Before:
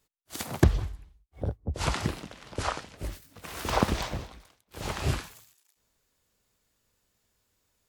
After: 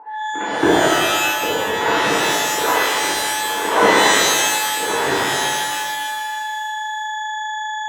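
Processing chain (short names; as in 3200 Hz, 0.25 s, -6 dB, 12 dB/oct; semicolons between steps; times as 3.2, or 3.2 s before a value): Wiener smoothing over 9 samples; gate -48 dBFS, range -27 dB; low-pass opened by the level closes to 1100 Hz, open at -27 dBFS; whine 860 Hz -45 dBFS; speaker cabinet 300–2500 Hz, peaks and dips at 310 Hz +8 dB, 450 Hz +10 dB, 970 Hz +5 dB, 1500 Hz +7 dB; in parallel at 0 dB: compressor, threshold -39 dBFS, peak gain reduction 24 dB; on the sum: shimmer reverb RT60 1.7 s, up +12 st, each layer -2 dB, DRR -10.5 dB; gain -2 dB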